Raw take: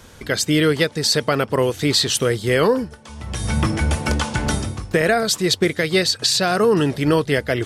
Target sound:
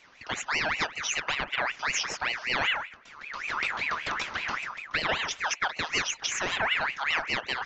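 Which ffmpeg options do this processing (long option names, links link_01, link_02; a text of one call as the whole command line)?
ffmpeg -i in.wav -af "aresample=11025,aresample=44100,bandreject=frequency=77.94:width_type=h:width=4,bandreject=frequency=155.88:width_type=h:width=4,bandreject=frequency=233.82:width_type=h:width=4,bandreject=frequency=311.76:width_type=h:width=4,bandreject=frequency=389.7:width_type=h:width=4,bandreject=frequency=467.64:width_type=h:width=4,bandreject=frequency=545.58:width_type=h:width=4,bandreject=frequency=623.52:width_type=h:width=4,bandreject=frequency=701.46:width_type=h:width=4,bandreject=frequency=779.4:width_type=h:width=4,bandreject=frequency=857.34:width_type=h:width=4,bandreject=frequency=935.28:width_type=h:width=4,bandreject=frequency=1013.22:width_type=h:width=4,bandreject=frequency=1091.16:width_type=h:width=4,bandreject=frequency=1169.1:width_type=h:width=4,bandreject=frequency=1247.04:width_type=h:width=4,bandreject=frequency=1324.98:width_type=h:width=4,bandreject=frequency=1402.92:width_type=h:width=4,bandreject=frequency=1480.86:width_type=h:width=4,bandreject=frequency=1558.8:width_type=h:width=4,bandreject=frequency=1636.74:width_type=h:width=4,bandreject=frequency=1714.68:width_type=h:width=4,bandreject=frequency=1792.62:width_type=h:width=4,aeval=exprs='val(0)*sin(2*PI*1800*n/s+1800*0.4/5.2*sin(2*PI*5.2*n/s))':channel_layout=same,volume=-8dB" out.wav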